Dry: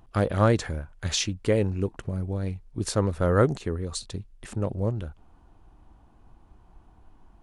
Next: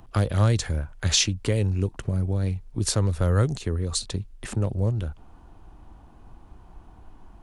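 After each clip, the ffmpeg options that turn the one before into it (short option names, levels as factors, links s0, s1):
-filter_complex "[0:a]acrossover=split=130|3000[s0][s1][s2];[s1]acompressor=threshold=0.0141:ratio=2.5[s3];[s0][s3][s2]amix=inputs=3:normalize=0,volume=2.11"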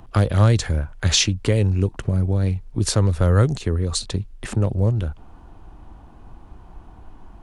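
-af "highshelf=f=5700:g=-5,volume=1.78"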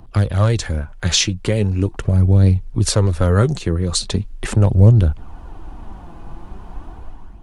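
-af "dynaudnorm=f=150:g=7:m=3.16,flanger=delay=0.2:depth=5.8:regen=54:speed=0.4:shape=sinusoidal,volume=1.41"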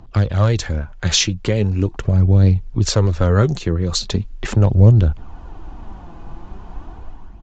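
-af "aresample=16000,aresample=44100"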